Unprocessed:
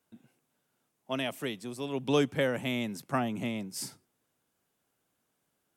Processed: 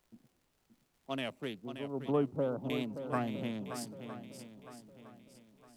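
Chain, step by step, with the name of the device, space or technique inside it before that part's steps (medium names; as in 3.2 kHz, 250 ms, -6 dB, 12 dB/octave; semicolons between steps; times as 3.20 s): local Wiener filter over 25 samples; 1.58–2.70 s: steep low-pass 1.4 kHz 96 dB/octave; warped LP (warped record 33 1/3 rpm, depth 100 cents; crackle 77 per s -54 dBFS; pink noise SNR 38 dB); shuffle delay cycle 960 ms, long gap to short 1.5:1, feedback 33%, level -9.5 dB; trim -4 dB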